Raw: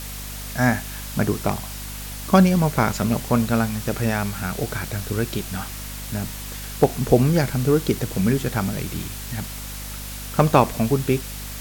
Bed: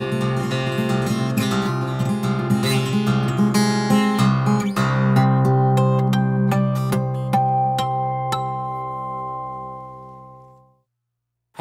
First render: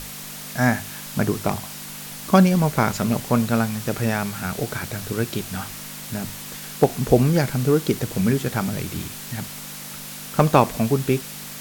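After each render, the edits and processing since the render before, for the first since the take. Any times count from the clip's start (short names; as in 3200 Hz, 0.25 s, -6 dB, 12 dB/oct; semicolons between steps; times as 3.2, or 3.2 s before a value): notches 50/100 Hz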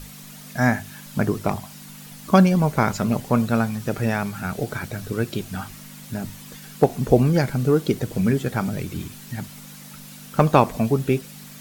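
denoiser 9 dB, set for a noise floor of -36 dBFS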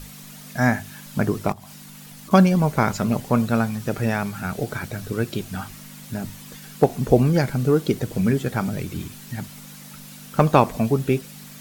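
1.52–2.31 compressor 16:1, threshold -37 dBFS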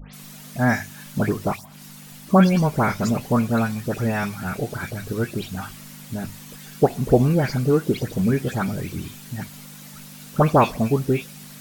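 dispersion highs, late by 0.138 s, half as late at 2800 Hz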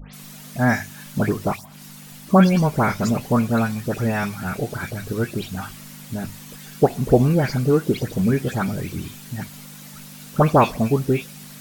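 gain +1 dB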